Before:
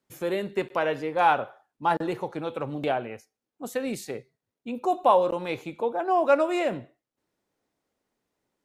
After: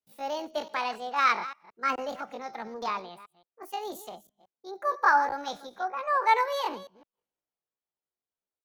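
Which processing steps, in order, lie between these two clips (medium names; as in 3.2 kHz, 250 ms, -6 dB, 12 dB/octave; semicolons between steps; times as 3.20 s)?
chunks repeated in reverse 172 ms, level -13 dB; pitch shift +8 st; three bands expanded up and down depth 40%; trim -4.5 dB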